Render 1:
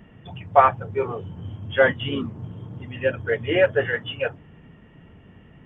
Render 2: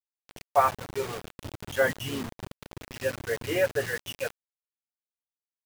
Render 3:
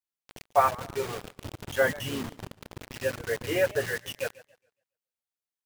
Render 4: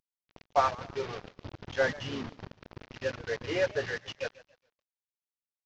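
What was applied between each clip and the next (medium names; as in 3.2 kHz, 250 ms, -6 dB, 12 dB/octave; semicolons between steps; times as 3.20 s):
bit crusher 5-bit; trim -7 dB
modulated delay 139 ms, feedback 30%, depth 161 cents, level -20 dB
CVSD coder 32 kbps; trim -3 dB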